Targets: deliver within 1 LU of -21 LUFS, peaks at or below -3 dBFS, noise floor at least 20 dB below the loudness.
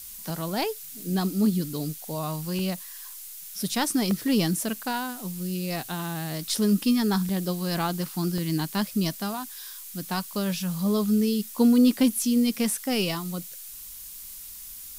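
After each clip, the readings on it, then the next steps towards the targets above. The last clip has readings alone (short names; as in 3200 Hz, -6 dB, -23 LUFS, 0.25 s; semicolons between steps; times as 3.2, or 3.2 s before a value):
dropouts 5; longest dropout 1.6 ms; noise floor -42 dBFS; noise floor target -47 dBFS; loudness -26.5 LUFS; peak -9.5 dBFS; loudness target -21.0 LUFS
-> interpolate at 0.3/2.59/4.11/7.29/8.38, 1.6 ms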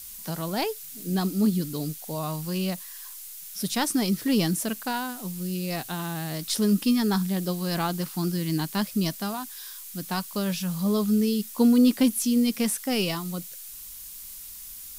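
dropouts 0; noise floor -42 dBFS; noise floor target -47 dBFS
-> denoiser 6 dB, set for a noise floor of -42 dBFS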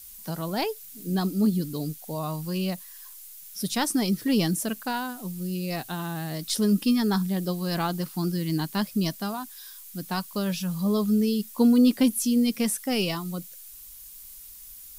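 noise floor -45 dBFS; noise floor target -47 dBFS
-> denoiser 6 dB, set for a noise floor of -45 dBFS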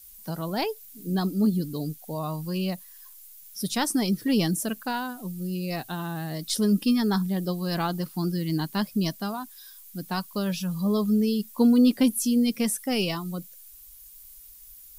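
noise floor -49 dBFS; loudness -26.5 LUFS; peak -10.0 dBFS; loudness target -21.0 LUFS
-> gain +5.5 dB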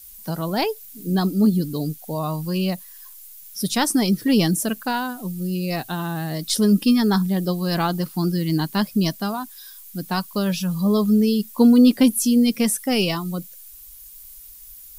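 loudness -21.0 LUFS; peak -4.5 dBFS; noise floor -43 dBFS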